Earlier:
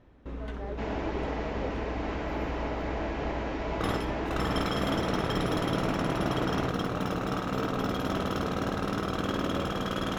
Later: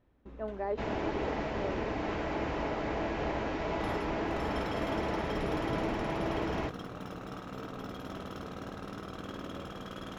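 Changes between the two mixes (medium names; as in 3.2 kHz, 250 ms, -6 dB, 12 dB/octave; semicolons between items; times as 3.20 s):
speech +7.5 dB; first sound -11.5 dB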